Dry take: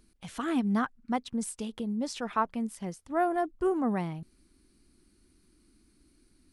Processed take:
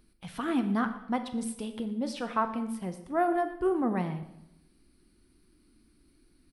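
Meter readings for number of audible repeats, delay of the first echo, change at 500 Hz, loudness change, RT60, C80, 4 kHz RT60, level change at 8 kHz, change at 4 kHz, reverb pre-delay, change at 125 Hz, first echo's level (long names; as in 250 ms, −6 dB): 1, 117 ms, +1.0 dB, +0.5 dB, 0.85 s, 12.5 dB, 0.75 s, −3.5 dB, −0.5 dB, 5 ms, +0.5 dB, −18.5 dB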